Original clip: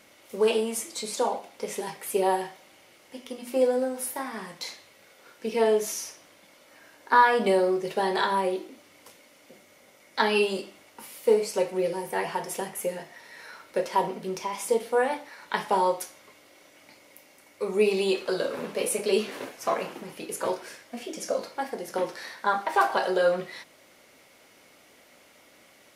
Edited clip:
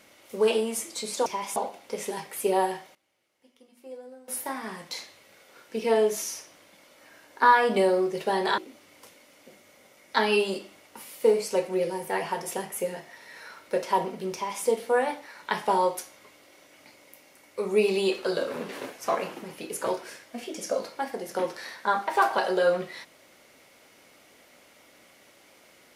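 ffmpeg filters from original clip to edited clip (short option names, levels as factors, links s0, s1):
-filter_complex "[0:a]asplit=7[s0][s1][s2][s3][s4][s5][s6];[s0]atrim=end=1.262[s7];[s1]atrim=start=14.368:end=14.672[s8];[s2]atrim=start=1.258:end=2.65,asetpts=PTS-STARTPTS,afade=t=out:st=1.222:d=0.17:c=log:silence=0.105925[s9];[s3]atrim=start=2.65:end=3.98,asetpts=PTS-STARTPTS,volume=0.106[s10];[s4]atrim=start=3.98:end=8.282,asetpts=PTS-STARTPTS,afade=t=in:d=0.17:c=log:silence=0.105925[s11];[s5]atrim=start=8.608:end=18.722[s12];[s6]atrim=start=19.278[s13];[s7][s8]acrossfade=d=0.004:c1=hsin:c2=hsin[s14];[s9][s10][s11]concat=n=3:v=0:a=1[s15];[s14][s15]acrossfade=d=0.004:c1=hsin:c2=hsin[s16];[s16][s12]acrossfade=d=0.004:c1=hsin:c2=hsin[s17];[s17][s13]acrossfade=d=0.004:c1=hsin:c2=hsin"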